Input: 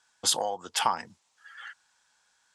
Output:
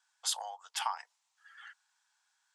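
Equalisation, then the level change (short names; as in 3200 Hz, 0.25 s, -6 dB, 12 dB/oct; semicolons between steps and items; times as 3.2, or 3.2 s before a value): steep high-pass 720 Hz 36 dB/oct; -8.0 dB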